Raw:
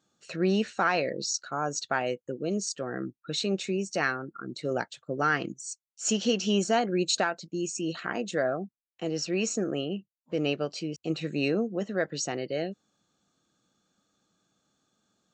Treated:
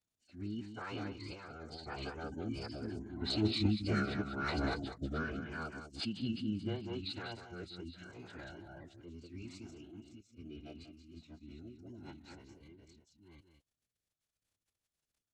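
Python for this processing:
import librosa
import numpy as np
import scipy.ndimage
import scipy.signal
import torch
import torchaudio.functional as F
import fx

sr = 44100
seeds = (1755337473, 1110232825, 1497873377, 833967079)

p1 = fx.reverse_delay(x, sr, ms=391, wet_db=-3.0)
p2 = fx.doppler_pass(p1, sr, speed_mps=8, closest_m=5.1, pass_at_s=4.08)
p3 = p2 + fx.echo_single(p2, sr, ms=192, db=-9.0, dry=0)
p4 = fx.dmg_crackle(p3, sr, seeds[0], per_s=100.0, level_db=-64.0)
p5 = fx.high_shelf(p4, sr, hz=4700.0, db=7.5)
p6 = np.clip(p5, -10.0 ** (-22.0 / 20.0), 10.0 ** (-22.0 / 20.0))
p7 = p5 + (p6 * 10.0 ** (-11.0 / 20.0))
p8 = fx.low_shelf(p7, sr, hz=170.0, db=11.0)
p9 = fx.notch(p8, sr, hz=730.0, q=17.0)
p10 = fx.pitch_keep_formants(p9, sr, semitones=-11.0)
p11 = fx.rotary_switch(p10, sr, hz=0.8, then_hz=7.0, switch_at_s=13.91)
y = p11 * 10.0 ** (-5.5 / 20.0)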